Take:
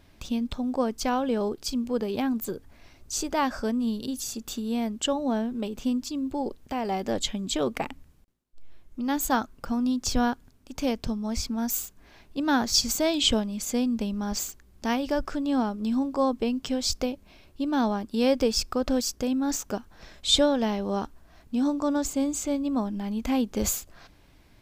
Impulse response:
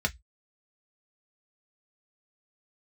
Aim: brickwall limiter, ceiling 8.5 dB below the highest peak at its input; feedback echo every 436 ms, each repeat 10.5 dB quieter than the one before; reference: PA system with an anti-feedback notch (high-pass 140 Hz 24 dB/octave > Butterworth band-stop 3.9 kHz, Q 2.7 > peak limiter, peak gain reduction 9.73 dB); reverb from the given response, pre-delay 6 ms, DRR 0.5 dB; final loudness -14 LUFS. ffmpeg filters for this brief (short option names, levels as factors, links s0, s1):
-filter_complex "[0:a]alimiter=limit=0.141:level=0:latency=1,aecho=1:1:436|872|1308:0.299|0.0896|0.0269,asplit=2[s0][s1];[1:a]atrim=start_sample=2205,adelay=6[s2];[s1][s2]afir=irnorm=-1:irlink=0,volume=0.355[s3];[s0][s3]amix=inputs=2:normalize=0,highpass=f=140:w=0.5412,highpass=f=140:w=1.3066,asuperstop=centerf=3900:order=8:qfactor=2.7,volume=5.62,alimiter=limit=0.562:level=0:latency=1"